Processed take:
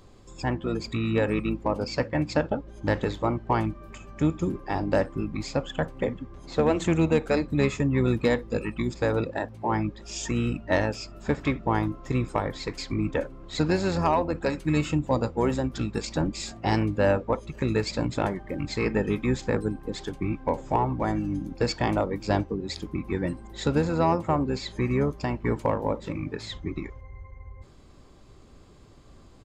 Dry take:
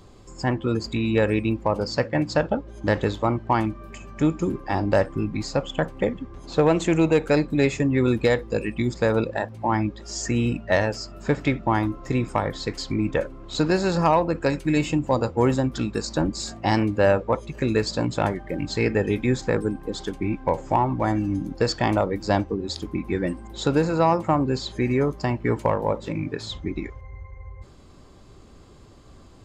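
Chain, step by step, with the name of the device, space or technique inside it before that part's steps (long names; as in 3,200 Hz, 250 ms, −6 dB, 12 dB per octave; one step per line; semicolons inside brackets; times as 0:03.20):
octave pedal (pitch-shifted copies added −12 semitones −8 dB)
level −4 dB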